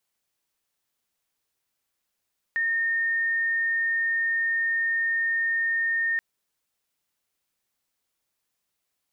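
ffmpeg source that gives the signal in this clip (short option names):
-f lavfi -i "sine=f=1830:d=3.63:r=44100,volume=-3.94dB"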